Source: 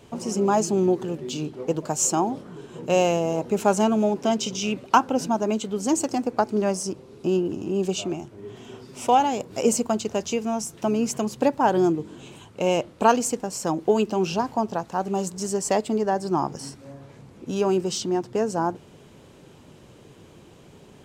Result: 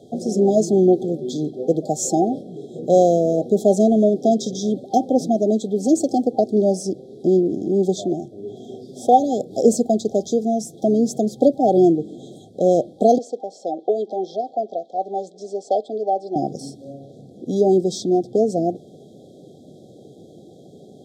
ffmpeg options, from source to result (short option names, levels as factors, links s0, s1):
-filter_complex "[0:a]asettb=1/sr,asplit=3[s0][s1][s2];[s0]atrim=end=13.184[s3];[s1]atrim=start=13.18:end=16.36,asetpts=PTS-STARTPTS,afade=t=in:d=0.004:c=qsin,afade=t=out:st=3.176:d=0.004:c=qsin,highpass=580,lowpass=3100[s4];[s2]atrim=start=16.356[s5];[s3][s4]acrossfade=d=0.004:c1=hsin:c2=qsin[s6];[s6][s5]acrossfade=d=0.004:c1=qsin:c2=hsin,afftfilt=real='re*(1-between(b*sr/4096,790,3200))':imag='im*(1-between(b*sr/4096,790,3200))':win_size=4096:overlap=0.75,highpass=170,highshelf=f=3100:g=-11,volume=2.24"